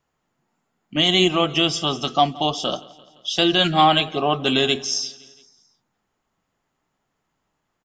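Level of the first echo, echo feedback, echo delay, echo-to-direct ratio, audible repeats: -21.5 dB, 57%, 171 ms, -20.0 dB, 3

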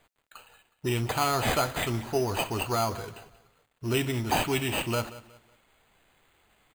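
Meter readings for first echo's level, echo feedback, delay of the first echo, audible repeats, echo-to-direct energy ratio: -17.0 dB, 32%, 183 ms, 2, -16.5 dB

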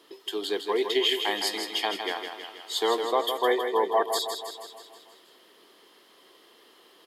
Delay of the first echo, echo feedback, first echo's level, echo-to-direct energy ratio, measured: 160 ms, 58%, -7.0 dB, -5.0 dB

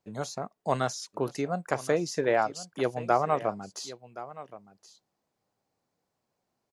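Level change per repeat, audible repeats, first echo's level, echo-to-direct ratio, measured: no regular repeats, 1, -16.0 dB, -16.0 dB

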